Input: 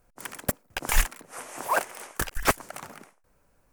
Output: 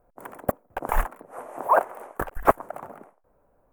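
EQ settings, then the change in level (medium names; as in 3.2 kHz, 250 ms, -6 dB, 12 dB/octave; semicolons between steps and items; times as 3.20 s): dynamic bell 1.2 kHz, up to +5 dB, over -37 dBFS, Q 1.2; FFT filter 160 Hz 0 dB, 660 Hz +9 dB, 1.1 kHz +3 dB, 5 kHz -24 dB, 14 kHz -6 dB; -1.5 dB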